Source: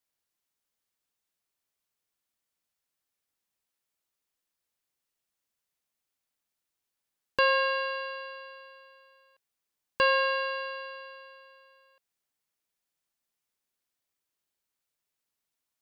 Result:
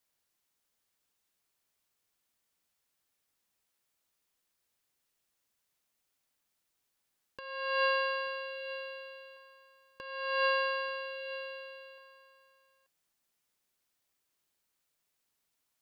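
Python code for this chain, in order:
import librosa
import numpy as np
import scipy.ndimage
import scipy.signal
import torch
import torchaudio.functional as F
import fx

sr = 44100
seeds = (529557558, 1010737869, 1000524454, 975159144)

y = fx.over_compress(x, sr, threshold_db=-31.0, ratio=-0.5)
y = y + 10.0 ** (-13.0 / 20.0) * np.pad(y, (int(884 * sr / 1000.0), 0))[:len(y)]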